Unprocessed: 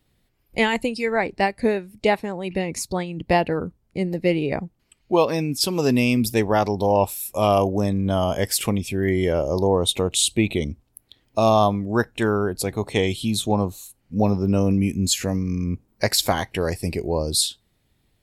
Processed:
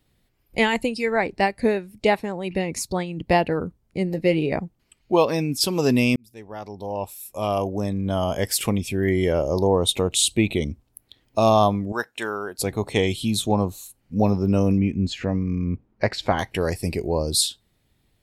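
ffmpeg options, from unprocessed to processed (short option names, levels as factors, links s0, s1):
-filter_complex "[0:a]asettb=1/sr,asplit=3[s0][s1][s2];[s0]atrim=end=4.084[s3];[s1]atrim=start=4.08:end=4.59,asetpts=PTS-STARTPTS,afade=t=in:d=0.004:c=qsin,afade=t=out:st=0.506:d=0.004:c=qsin,asplit=2[s4][s5];[s5]adelay=19,volume=0.251[s6];[s4][s6]amix=inputs=2:normalize=0,atrim=end_sample=22491[s7];[s2]atrim=start=4.586[s8];[s3][s7]acrossfade=d=0.004:c1=hsin:c2=qsin[s9];[s9][s8]acrossfade=d=0.004:c1=qsin:c2=hsin,asettb=1/sr,asplit=3[s10][s11][s12];[s10]atrim=end=11.924[s13];[s11]atrim=start=11.92:end=12.59,asetpts=PTS-STARTPTS,afade=t=in:d=0.004:c=qsin,afade=t=out:st=0.666:d=0.004:c=qsin,highpass=f=990:p=1[s14];[s12]atrim=start=12.586[s15];[s13][s14]acrossfade=d=0.004:c1=hsin:c2=qsin[s16];[s16][s15]acrossfade=d=0.004:c1=qsin:c2=hsin,asettb=1/sr,asplit=3[s17][s18][s19];[s17]atrim=end=14.784[s20];[s18]atrim=start=14.78:end=16.39,asetpts=PTS-STARTPTS,afade=t=in:d=0.004:c=qsin,afade=t=out:st=1.606:d=0.004:c=qsin,lowpass=2500[s21];[s19]atrim=start=16.386[s22];[s20][s21]acrossfade=d=0.004:c1=hsin:c2=qsin[s23];[s23][s22]acrossfade=d=0.004:c1=qsin:c2=hsin,asplit=2[s24][s25];[s24]atrim=end=6.16,asetpts=PTS-STARTPTS,afade=t=out:st=6.156:d=0.004:c=hsin[s26];[s25]atrim=start=6.16,asetpts=PTS-STARTPTS,afade=t=in:d=2.62[s27];[s26][s27]concat=n=2:v=0:a=1"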